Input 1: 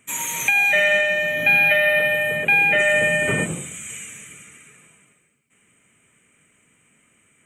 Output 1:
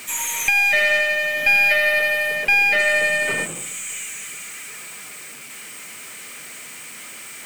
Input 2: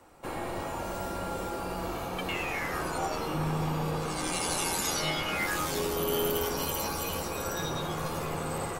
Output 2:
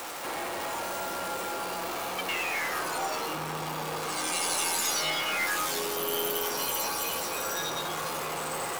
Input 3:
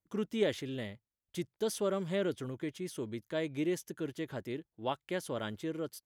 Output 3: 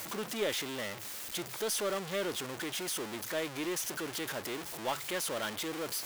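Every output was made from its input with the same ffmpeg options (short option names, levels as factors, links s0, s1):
-af "aeval=exprs='val(0)+0.5*0.0299*sgn(val(0))':c=same,highpass=f=710:p=1,aeval=exprs='0.473*(cos(1*acos(clip(val(0)/0.473,-1,1)))-cos(1*PI/2))+0.0531*(cos(2*acos(clip(val(0)/0.473,-1,1)))-cos(2*PI/2))+0.00944*(cos(6*acos(clip(val(0)/0.473,-1,1)))-cos(6*PI/2))':c=same"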